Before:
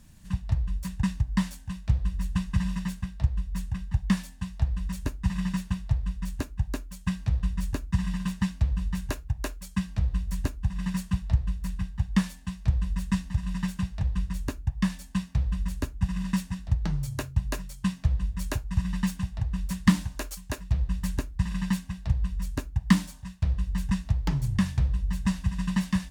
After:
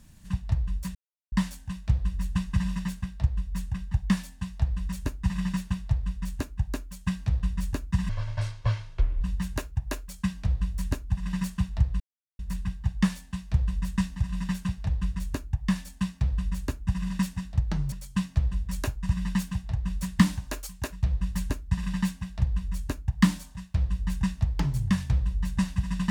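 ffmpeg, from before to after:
-filter_complex "[0:a]asplit=7[s0][s1][s2][s3][s4][s5][s6];[s0]atrim=end=0.95,asetpts=PTS-STARTPTS,afade=t=out:st=0.946:d=0.004:c=hsin[s7];[s1]atrim=start=0.95:end=1.32,asetpts=PTS-STARTPTS,volume=0[s8];[s2]atrim=start=1.32:end=8.094,asetpts=PTS-STARTPTS,afade=t=in:d=0.004:c=hsin[s9];[s3]atrim=start=8.09:end=8.74,asetpts=PTS-STARTPTS,asetrate=25578,aresample=44100,atrim=end_sample=49422,asetpts=PTS-STARTPTS[s10];[s4]atrim=start=8.736:end=11.53,asetpts=PTS-STARTPTS,afade=t=out:st=2.79:d=0.004:c=hsin,apad=pad_dur=0.39[s11];[s5]atrim=start=11.53:end=17.062,asetpts=PTS-STARTPTS,afade=t=in:d=0.004:c=hsin[s12];[s6]atrim=start=17.598[s13];[s7][s8][s9]concat=n=3:v=0:a=1[s14];[s14][s10]acrossfade=d=0.004:c1=hsin:c2=hsin[s15];[s11][s12]concat=n=2:v=0:a=1[s16];[s15][s16]acrossfade=d=0.004:c1=hsin:c2=hsin[s17];[s17][s13]acrossfade=d=0.004:c1=hsin:c2=hsin"

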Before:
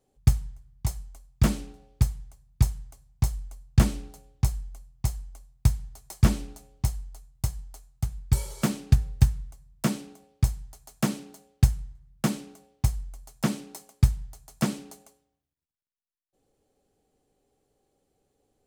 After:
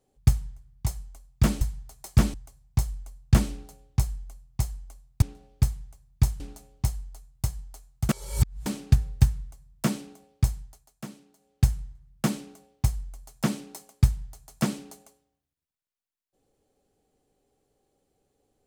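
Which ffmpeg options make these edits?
-filter_complex "[0:a]asplit=9[s0][s1][s2][s3][s4][s5][s6][s7][s8];[s0]atrim=end=1.612[s9];[s1]atrim=start=5.668:end=6.402[s10];[s2]atrim=start=2.788:end=5.672[s11];[s3]atrim=start=1.608:end=2.792[s12];[s4]atrim=start=6.398:end=8.092[s13];[s5]atrim=start=8.088:end=8.662,asetpts=PTS-STARTPTS,areverse[s14];[s6]atrim=start=8.658:end=10.9,asetpts=PTS-STARTPTS,afade=t=out:st=1.922:d=0.32:silence=0.199526[s15];[s7]atrim=start=10.9:end=11.38,asetpts=PTS-STARTPTS,volume=0.2[s16];[s8]atrim=start=11.38,asetpts=PTS-STARTPTS,afade=t=in:d=0.32:silence=0.199526[s17];[s9][s10]acrossfade=d=0.004:c1=hsin:c2=hsin[s18];[s18][s11]acrossfade=d=0.004:c1=hsin:c2=hsin[s19];[s19][s12]acrossfade=d=0.004:c1=hsin:c2=hsin[s20];[s20][s13]acrossfade=d=0.004:c1=hsin:c2=hsin[s21];[s21][s14]acrossfade=d=0.004:c1=hsin:c2=hsin[s22];[s15][s16][s17]concat=n=3:v=0:a=1[s23];[s22][s23]acrossfade=d=0.004:c1=hsin:c2=hsin"

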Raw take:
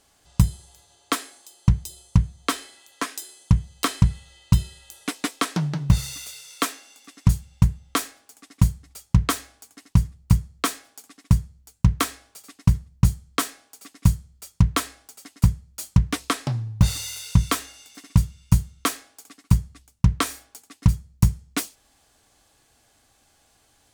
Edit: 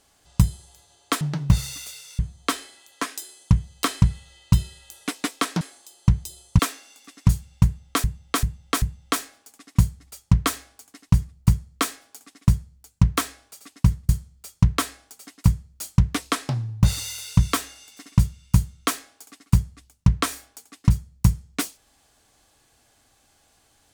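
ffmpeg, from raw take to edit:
-filter_complex "[0:a]asplit=9[s0][s1][s2][s3][s4][s5][s6][s7][s8];[s0]atrim=end=1.212[s9];[s1]atrim=start=5.608:end=6.592[s10];[s2]atrim=start=2.188:end=5.612[s11];[s3]atrim=start=1.208:end=2.192[s12];[s4]atrim=start=6.588:end=8.042[s13];[s5]atrim=start=7.648:end=8.042[s14];[s6]atrim=start=7.648:end=8.042[s15];[s7]atrim=start=7.648:end=12.922[s16];[s8]atrim=start=14.068[s17];[s9][s10]acrossfade=d=0.004:c1=hsin:c2=hsin[s18];[s18][s11]acrossfade=d=0.004:c1=hsin:c2=hsin[s19];[s19][s12]acrossfade=d=0.004:c1=hsin:c2=hsin[s20];[s20][s13]acrossfade=d=0.004:c1=hsin:c2=hsin[s21];[s21][s14]acrossfade=d=0.004:c1=hsin:c2=hsin[s22];[s22][s15]acrossfade=d=0.004:c1=hsin:c2=hsin[s23];[s23][s16]acrossfade=d=0.004:c1=hsin:c2=hsin[s24];[s24][s17]acrossfade=d=0.004:c1=hsin:c2=hsin"

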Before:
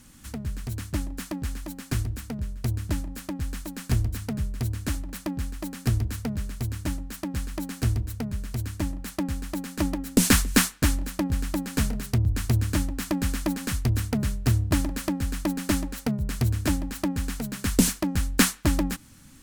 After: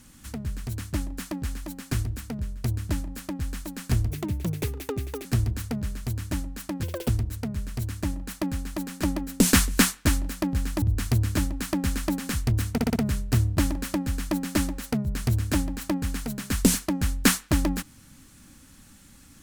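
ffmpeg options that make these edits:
-filter_complex "[0:a]asplit=10[s0][s1][s2][s3][s4][s5][s6][s7][s8][s9];[s0]atrim=end=4.104[s10];[s1]atrim=start=4.1:end=5.79,asetpts=PTS-STARTPTS,asetrate=64827,aresample=44100[s11];[s2]atrim=start=5.786:end=7.374[s12];[s3]atrim=start=7.37:end=7.86,asetpts=PTS-STARTPTS,asetrate=82908,aresample=44100,atrim=end_sample=11494,asetpts=PTS-STARTPTS[s13];[s4]atrim=start=7.856:end=11.592[s14];[s5]atrim=start=12.198:end=14.162[s15];[s6]atrim=start=14.098:end=14.162[s16];[s7]atrim=start=14.098:end=14.162[s17];[s8]atrim=start=14.098:end=14.162[s18];[s9]atrim=start=14.098[s19];[s10][s11]acrossfade=d=0.004:c1=hsin:c2=hsin[s20];[s20][s12]acrossfade=d=0.004:c1=hsin:c2=hsin[s21];[s21][s13]acrossfade=d=0.004:c1=hsin:c2=hsin[s22];[s22][s14]acrossfade=d=0.004:c1=hsin:c2=hsin[s23];[s23][s15]acrossfade=d=0.004:c1=hsin:c2=hsin[s24];[s24][s16]acrossfade=d=0.004:c1=hsin:c2=hsin[s25];[s25][s17]acrossfade=d=0.004:c1=hsin:c2=hsin[s26];[s26][s18]acrossfade=d=0.004:c1=hsin:c2=hsin[s27];[s27][s19]acrossfade=d=0.004:c1=hsin:c2=hsin"

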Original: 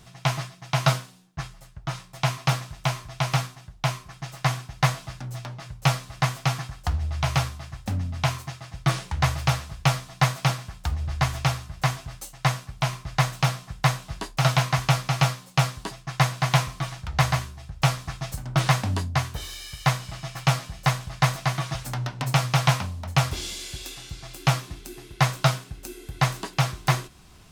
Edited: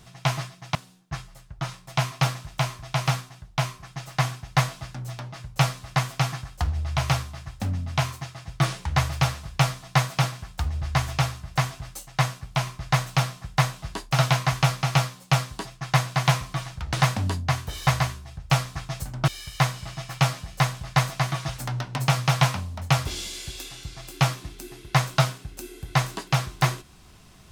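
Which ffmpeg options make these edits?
-filter_complex "[0:a]asplit=5[s0][s1][s2][s3][s4];[s0]atrim=end=0.752[s5];[s1]atrim=start=1.008:end=17.192[s6];[s2]atrim=start=18.598:end=19.542[s7];[s3]atrim=start=17.188:end=18.602[s8];[s4]atrim=start=19.538[s9];[s5][s6]acrossfade=d=0.004:c1=hsin:c2=hsin[s10];[s10][s7]acrossfade=d=0.004:c1=hsin:c2=hsin[s11];[s11][s8]acrossfade=d=0.004:c1=hsin:c2=hsin[s12];[s12][s9]acrossfade=d=0.004:c1=hsin:c2=hsin"

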